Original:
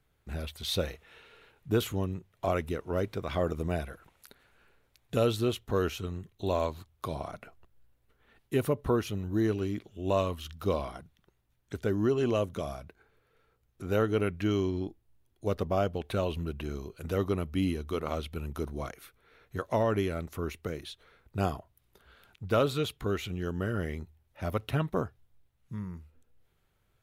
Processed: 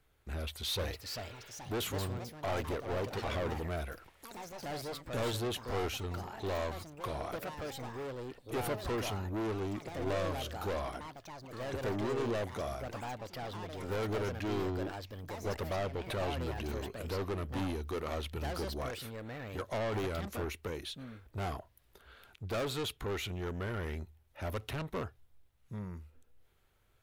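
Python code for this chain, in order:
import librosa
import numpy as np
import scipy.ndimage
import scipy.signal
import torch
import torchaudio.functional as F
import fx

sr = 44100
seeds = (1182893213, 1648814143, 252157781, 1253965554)

y = 10.0 ** (-33.0 / 20.0) * np.tanh(x / 10.0 ** (-33.0 / 20.0))
y = fx.echo_pitch(y, sr, ms=555, semitones=4, count=3, db_per_echo=-6.0)
y = fx.peak_eq(y, sr, hz=160.0, db=-6.0, octaves=1.1)
y = y * librosa.db_to_amplitude(2.0)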